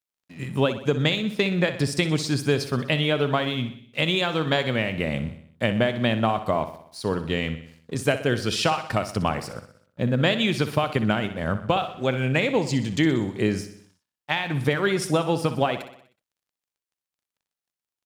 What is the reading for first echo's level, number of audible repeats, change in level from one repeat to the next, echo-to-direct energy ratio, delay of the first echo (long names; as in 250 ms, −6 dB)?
−12.0 dB, 5, −5.0 dB, −10.5 dB, 62 ms